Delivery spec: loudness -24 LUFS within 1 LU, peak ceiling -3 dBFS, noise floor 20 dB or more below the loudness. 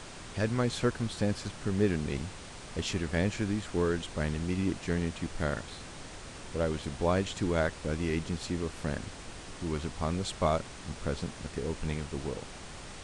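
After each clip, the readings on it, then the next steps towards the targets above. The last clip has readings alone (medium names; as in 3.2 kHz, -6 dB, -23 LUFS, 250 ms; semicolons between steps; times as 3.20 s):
noise floor -46 dBFS; noise floor target -53 dBFS; loudness -33.0 LUFS; peak level -14.0 dBFS; loudness target -24.0 LUFS
-> noise print and reduce 7 dB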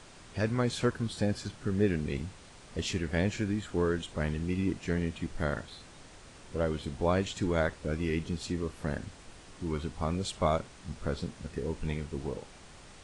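noise floor -52 dBFS; noise floor target -53 dBFS
-> noise print and reduce 6 dB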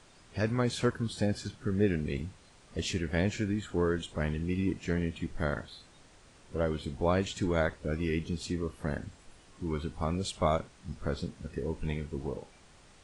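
noise floor -58 dBFS; loudness -33.0 LUFS; peak level -14.0 dBFS; loudness target -24.0 LUFS
-> trim +9 dB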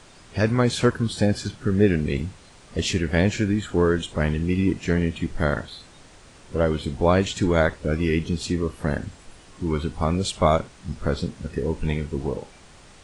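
loudness -24.0 LUFS; peak level -5.0 dBFS; noise floor -49 dBFS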